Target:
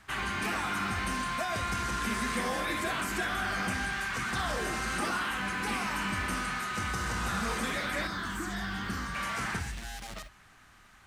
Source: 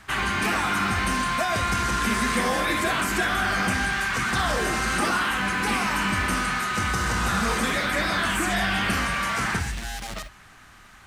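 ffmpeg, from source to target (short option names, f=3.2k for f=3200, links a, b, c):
-filter_complex "[0:a]asettb=1/sr,asplit=3[a][b][c];[a]atrim=end=8.074[d];[b]atrim=start=8.07:end=9.15,asetpts=PTS-STARTPTS,afade=t=in:d=0.004:c=qsin,afade=t=out:st=1.076:d=0.004:c=qsin,equalizer=f=630:t=o:w=0.67:g=-11,equalizer=f=2.5k:t=o:w=0.67:g=-12,equalizer=f=10k:t=o:w=0.67:g=-9[e];[c]atrim=start=9.146[f];[d][e]acrossfade=d=0.004:c1=hsin:c2=qsin[g];[g][f]acrossfade=d=0.004:c1=qsin:c2=hsin,volume=-8dB"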